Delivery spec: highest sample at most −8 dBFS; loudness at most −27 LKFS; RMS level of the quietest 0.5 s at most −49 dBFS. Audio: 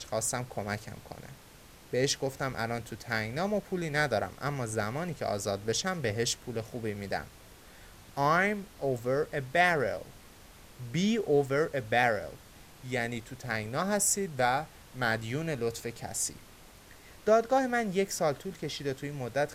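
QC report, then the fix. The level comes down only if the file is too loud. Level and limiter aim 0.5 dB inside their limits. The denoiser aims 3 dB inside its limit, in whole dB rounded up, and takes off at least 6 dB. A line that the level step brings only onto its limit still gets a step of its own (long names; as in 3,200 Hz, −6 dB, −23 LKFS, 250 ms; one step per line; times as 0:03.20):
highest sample −11.5 dBFS: in spec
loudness −31.0 LKFS: in spec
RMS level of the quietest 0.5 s −53 dBFS: in spec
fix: no processing needed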